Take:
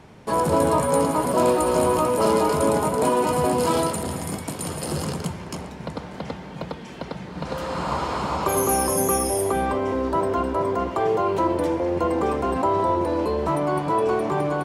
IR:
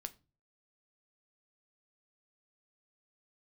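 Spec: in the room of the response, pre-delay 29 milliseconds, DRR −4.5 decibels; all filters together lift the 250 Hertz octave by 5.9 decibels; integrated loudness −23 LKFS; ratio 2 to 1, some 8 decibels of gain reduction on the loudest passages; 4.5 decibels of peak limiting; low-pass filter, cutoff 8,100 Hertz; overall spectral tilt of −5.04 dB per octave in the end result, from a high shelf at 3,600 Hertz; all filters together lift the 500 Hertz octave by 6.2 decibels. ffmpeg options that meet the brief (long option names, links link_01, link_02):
-filter_complex "[0:a]lowpass=8100,equalizer=frequency=250:width_type=o:gain=5.5,equalizer=frequency=500:width_type=o:gain=6,highshelf=frequency=3600:gain=-4.5,acompressor=threshold=-25dB:ratio=2,alimiter=limit=-15.5dB:level=0:latency=1,asplit=2[link_01][link_02];[1:a]atrim=start_sample=2205,adelay=29[link_03];[link_02][link_03]afir=irnorm=-1:irlink=0,volume=8dB[link_04];[link_01][link_04]amix=inputs=2:normalize=0,volume=-3.5dB"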